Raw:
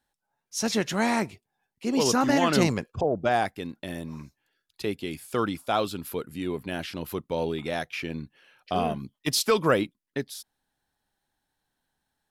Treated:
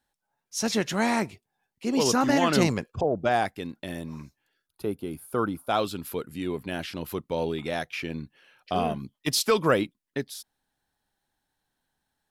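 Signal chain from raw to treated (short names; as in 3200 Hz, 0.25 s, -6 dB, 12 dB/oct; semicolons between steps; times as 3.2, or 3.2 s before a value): spectral gain 4.67–5.7, 1600–9000 Hz -12 dB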